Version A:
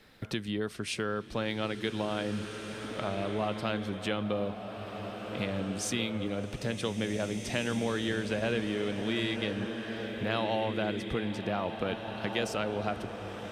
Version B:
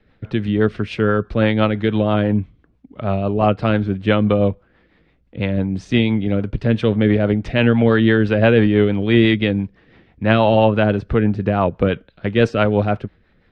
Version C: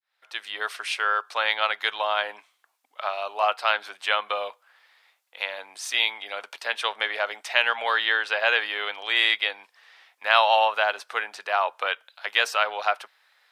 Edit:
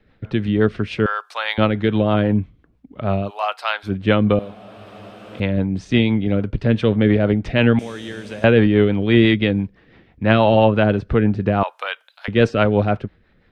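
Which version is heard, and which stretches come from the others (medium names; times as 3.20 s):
B
1.06–1.58 s: from C
3.26–3.88 s: from C, crossfade 0.10 s
4.39–5.40 s: from A
7.79–8.44 s: from A
11.63–12.28 s: from C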